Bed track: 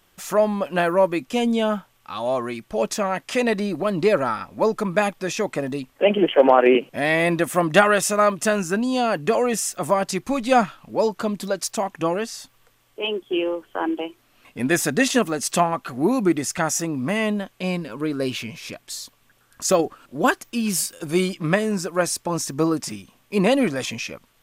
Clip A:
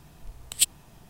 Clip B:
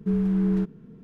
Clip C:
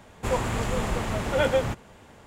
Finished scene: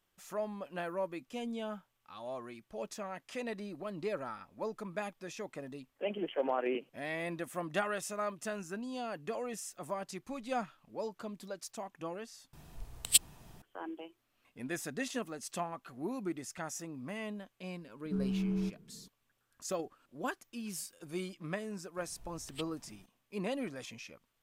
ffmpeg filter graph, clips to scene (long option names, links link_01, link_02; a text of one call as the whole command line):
ffmpeg -i bed.wav -i cue0.wav -i cue1.wav -filter_complex "[1:a]asplit=2[link_01][link_02];[0:a]volume=-18.5dB[link_03];[2:a]equalizer=frequency=2000:width=1.7:gain=-7[link_04];[link_02]acrossover=split=3200[link_05][link_06];[link_06]acompressor=threshold=-48dB:ratio=4:attack=1:release=60[link_07];[link_05][link_07]amix=inputs=2:normalize=0[link_08];[link_03]asplit=2[link_09][link_10];[link_09]atrim=end=12.534[link_11];[link_01]atrim=end=1.09,asetpts=PTS-STARTPTS,volume=-3dB[link_12];[link_10]atrim=start=13.616[link_13];[link_04]atrim=end=1.03,asetpts=PTS-STARTPTS,volume=-10.5dB,afade=type=in:duration=0.004:curve=hsin,afade=type=out:start_time=1.026:duration=0.004:curve=hsin,adelay=18050[link_14];[link_08]atrim=end=1.09,asetpts=PTS-STARTPTS,volume=-10.5dB,afade=type=in:duration=0.004:curve=hsin,afade=type=out:start_time=1.086:duration=0.004:curve=hsin,adelay=21970[link_15];[link_11][link_12]acrossfade=duration=0.004:curve1=hsin:curve2=hsin[link_16];[link_16][link_13]acrossfade=duration=0.004:curve1=hsin:curve2=hsin[link_17];[link_17][link_14][link_15]amix=inputs=3:normalize=0" out.wav